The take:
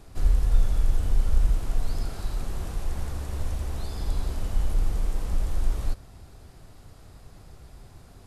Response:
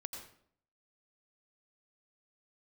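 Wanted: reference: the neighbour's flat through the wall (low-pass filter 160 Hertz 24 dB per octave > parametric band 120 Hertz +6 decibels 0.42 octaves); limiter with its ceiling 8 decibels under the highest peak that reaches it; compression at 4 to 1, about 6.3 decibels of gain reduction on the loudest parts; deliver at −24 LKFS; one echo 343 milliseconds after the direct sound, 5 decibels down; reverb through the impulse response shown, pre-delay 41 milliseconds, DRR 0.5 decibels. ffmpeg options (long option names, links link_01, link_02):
-filter_complex "[0:a]acompressor=threshold=-21dB:ratio=4,alimiter=limit=-23.5dB:level=0:latency=1,aecho=1:1:343:0.562,asplit=2[link_01][link_02];[1:a]atrim=start_sample=2205,adelay=41[link_03];[link_02][link_03]afir=irnorm=-1:irlink=0,volume=1.5dB[link_04];[link_01][link_04]amix=inputs=2:normalize=0,lowpass=frequency=160:width=0.5412,lowpass=frequency=160:width=1.3066,equalizer=frequency=120:width_type=o:width=0.42:gain=6,volume=8dB"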